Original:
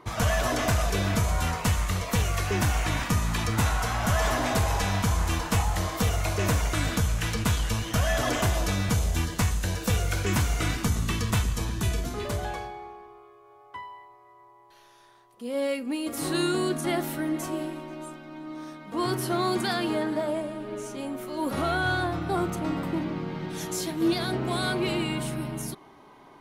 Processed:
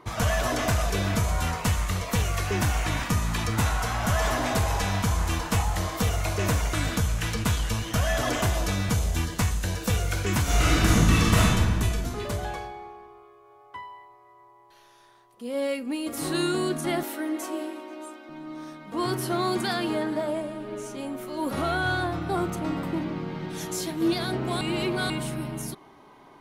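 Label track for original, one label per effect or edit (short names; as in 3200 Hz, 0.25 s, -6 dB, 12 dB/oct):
10.420000	11.470000	reverb throw, RT60 1.7 s, DRR -7.5 dB
17.030000	18.290000	steep high-pass 270 Hz
24.610000	25.100000	reverse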